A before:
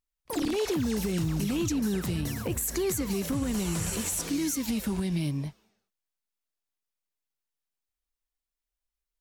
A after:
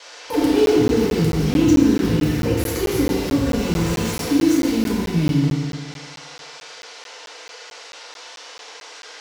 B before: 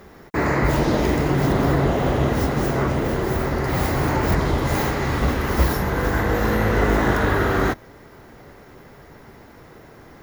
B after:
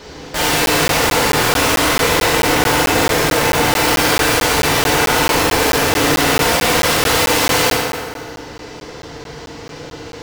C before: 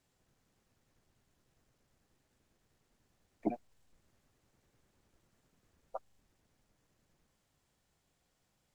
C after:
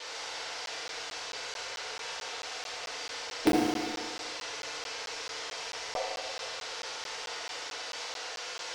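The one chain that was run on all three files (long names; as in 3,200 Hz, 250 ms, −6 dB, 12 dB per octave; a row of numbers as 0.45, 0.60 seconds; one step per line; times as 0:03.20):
running median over 5 samples
noise in a band 440–5,900 Hz −49 dBFS
wrap-around overflow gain 20 dB
parametric band 490 Hz +4.5 dB 0.42 octaves
tape wow and flutter 42 cents
feedback delay network reverb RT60 1.9 s, low-frequency decay 0.75×, high-frequency decay 0.65×, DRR −6 dB
regular buffer underruns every 0.22 s, samples 512, zero, from 0:00.66
level +3 dB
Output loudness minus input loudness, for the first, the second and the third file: +10.5, +7.5, +7.5 LU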